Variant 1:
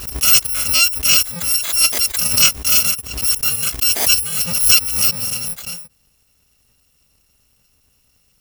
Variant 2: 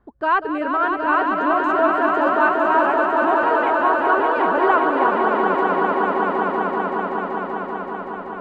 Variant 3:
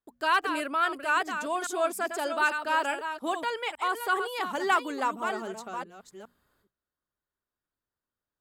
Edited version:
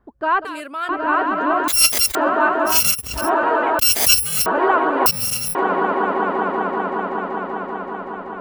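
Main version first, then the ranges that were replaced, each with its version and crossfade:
2
0:00.45–0:00.89: punch in from 3
0:01.68–0:02.15: punch in from 1
0:02.73–0:03.22: punch in from 1, crossfade 0.16 s
0:03.79–0:04.46: punch in from 1
0:05.06–0:05.55: punch in from 1

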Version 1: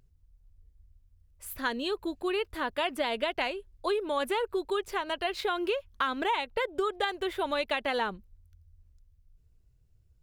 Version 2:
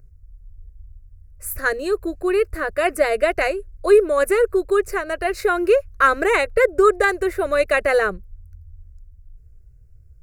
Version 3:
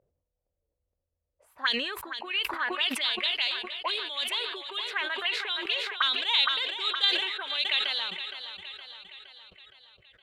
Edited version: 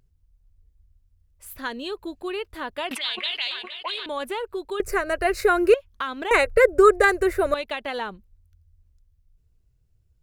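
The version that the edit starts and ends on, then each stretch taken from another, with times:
1
0:02.91–0:04.06: punch in from 3
0:04.80–0:05.74: punch in from 2
0:06.31–0:07.54: punch in from 2

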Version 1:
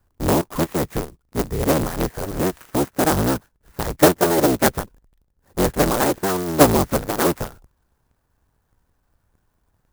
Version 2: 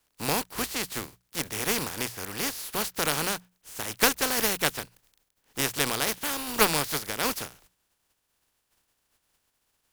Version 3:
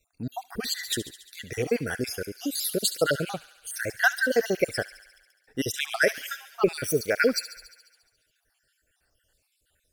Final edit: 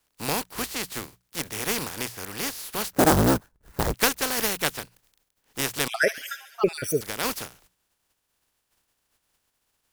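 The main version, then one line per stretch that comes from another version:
2
0:02.93–0:03.94: punch in from 1
0:05.88–0:07.01: punch in from 3

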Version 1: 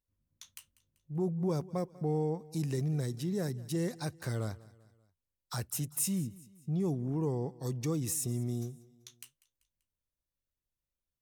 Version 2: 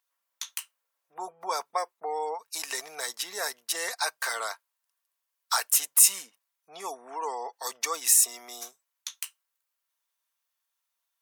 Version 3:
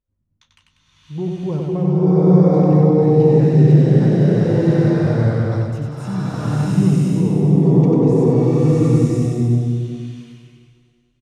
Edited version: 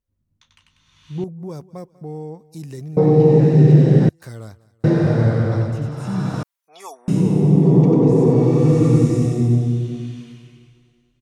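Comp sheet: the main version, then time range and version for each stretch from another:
3
0:01.24–0:02.97: punch in from 1
0:04.09–0:04.84: punch in from 1
0:06.43–0:07.08: punch in from 2

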